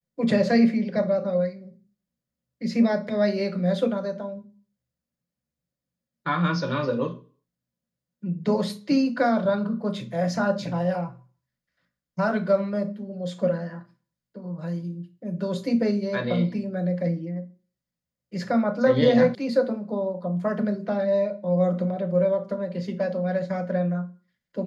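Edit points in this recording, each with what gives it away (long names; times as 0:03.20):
0:19.35: cut off before it has died away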